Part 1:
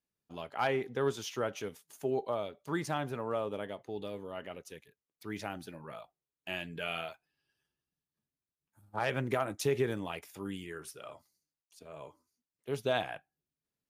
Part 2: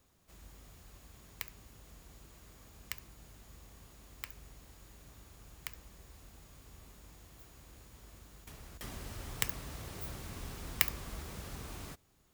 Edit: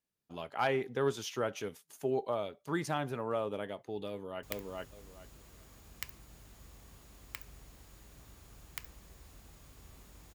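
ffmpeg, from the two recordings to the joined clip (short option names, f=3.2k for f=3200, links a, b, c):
-filter_complex "[0:a]apad=whole_dur=10.34,atrim=end=10.34,atrim=end=4.432[a];[1:a]atrim=start=1.318:end=7.23[b];[a][b]acrossfade=d=0.004:c1=hsin:c2=hsin,asplit=2[c][d];[d]afade=t=in:st=4.08:d=0.01,afade=t=out:st=4.43:d=0.01,aecho=0:1:420|840|1260:0.944061|0.188812|0.0377624[e];[c][e]amix=inputs=2:normalize=0"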